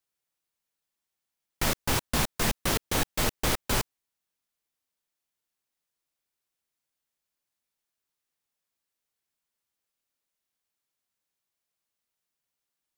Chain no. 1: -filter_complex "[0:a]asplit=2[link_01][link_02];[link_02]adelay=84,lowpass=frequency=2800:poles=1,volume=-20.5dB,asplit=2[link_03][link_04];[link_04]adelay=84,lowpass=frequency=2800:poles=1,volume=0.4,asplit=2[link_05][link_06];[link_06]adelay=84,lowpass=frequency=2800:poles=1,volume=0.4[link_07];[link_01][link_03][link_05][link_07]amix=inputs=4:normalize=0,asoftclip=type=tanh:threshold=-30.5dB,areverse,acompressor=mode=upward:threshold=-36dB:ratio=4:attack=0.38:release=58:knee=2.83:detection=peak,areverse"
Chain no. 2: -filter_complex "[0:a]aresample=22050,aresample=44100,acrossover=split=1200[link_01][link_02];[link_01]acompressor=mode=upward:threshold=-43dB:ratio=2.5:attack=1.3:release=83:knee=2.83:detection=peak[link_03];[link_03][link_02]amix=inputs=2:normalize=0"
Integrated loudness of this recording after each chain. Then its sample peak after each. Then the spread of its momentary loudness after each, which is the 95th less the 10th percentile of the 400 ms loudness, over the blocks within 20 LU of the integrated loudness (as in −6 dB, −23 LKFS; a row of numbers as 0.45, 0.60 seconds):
−42.0, −29.0 LKFS; −30.5, −12.5 dBFS; 16, 3 LU